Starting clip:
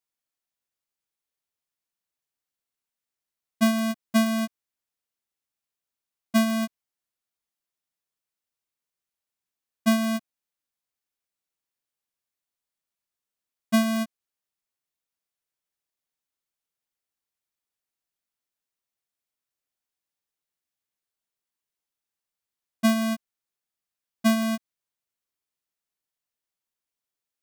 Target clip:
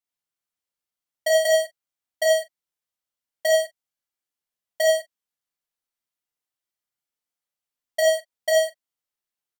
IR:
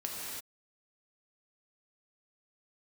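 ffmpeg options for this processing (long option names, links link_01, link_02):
-filter_complex "[0:a]aecho=1:1:117:0.133[link_01];[1:a]atrim=start_sample=2205,asetrate=48510,aresample=44100[link_02];[link_01][link_02]afir=irnorm=-1:irlink=0,asetrate=126126,aresample=44100,volume=1.5dB"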